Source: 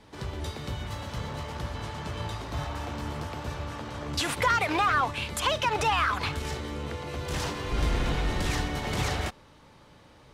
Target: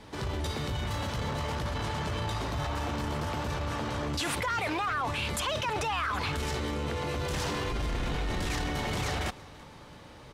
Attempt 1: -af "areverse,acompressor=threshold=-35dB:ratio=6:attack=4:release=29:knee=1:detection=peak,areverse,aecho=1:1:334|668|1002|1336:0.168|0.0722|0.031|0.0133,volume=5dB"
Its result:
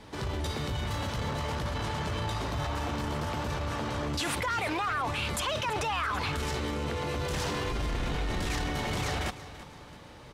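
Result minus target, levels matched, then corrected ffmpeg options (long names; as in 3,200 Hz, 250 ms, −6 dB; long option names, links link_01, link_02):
echo-to-direct +7 dB
-af "areverse,acompressor=threshold=-35dB:ratio=6:attack=4:release=29:knee=1:detection=peak,areverse,aecho=1:1:334|668|1002:0.075|0.0322|0.0139,volume=5dB"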